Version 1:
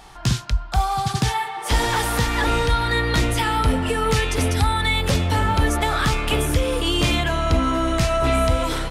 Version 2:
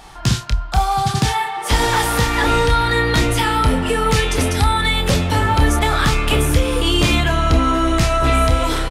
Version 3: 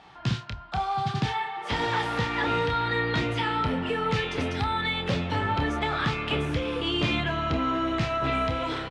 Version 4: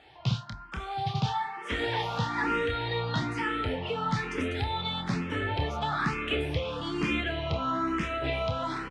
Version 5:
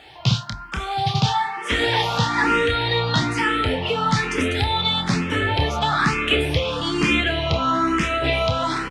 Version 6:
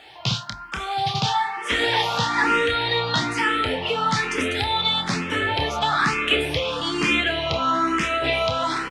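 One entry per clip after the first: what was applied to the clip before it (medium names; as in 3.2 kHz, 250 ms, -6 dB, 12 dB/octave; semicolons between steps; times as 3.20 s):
doubling 28 ms -8.5 dB; trim +3.5 dB
Chebyshev band-pass 120–3200 Hz, order 2; trim -8.5 dB
barber-pole phaser +1.1 Hz
treble shelf 3.6 kHz +9 dB; trim +8.5 dB
bass shelf 210 Hz -10 dB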